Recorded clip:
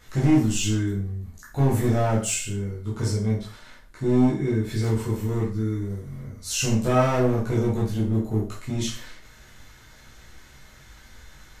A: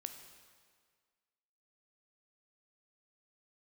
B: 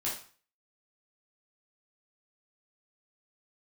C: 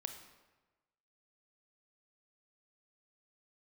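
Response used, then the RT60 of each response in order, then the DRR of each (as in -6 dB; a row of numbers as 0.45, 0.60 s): B; 1.8, 0.40, 1.2 s; 6.5, -7.0, 6.5 dB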